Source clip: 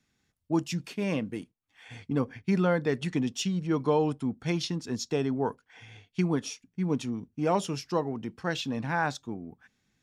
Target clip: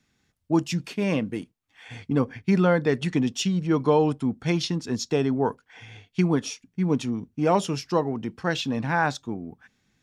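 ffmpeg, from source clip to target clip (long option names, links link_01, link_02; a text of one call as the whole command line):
ffmpeg -i in.wav -af "highshelf=frequency=9300:gain=-4.5,volume=5dB" out.wav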